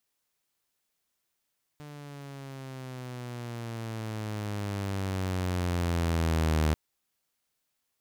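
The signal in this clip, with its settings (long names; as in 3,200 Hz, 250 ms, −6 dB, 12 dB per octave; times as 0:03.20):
pitch glide with a swell saw, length 4.94 s, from 149 Hz, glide −11.5 semitones, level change +20 dB, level −20 dB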